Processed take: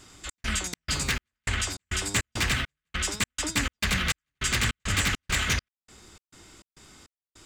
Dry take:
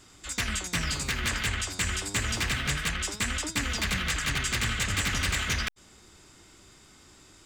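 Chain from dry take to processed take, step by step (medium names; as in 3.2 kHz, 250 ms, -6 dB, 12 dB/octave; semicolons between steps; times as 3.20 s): trance gate "xx.xx.xx.." 102 bpm -60 dB; trim +3 dB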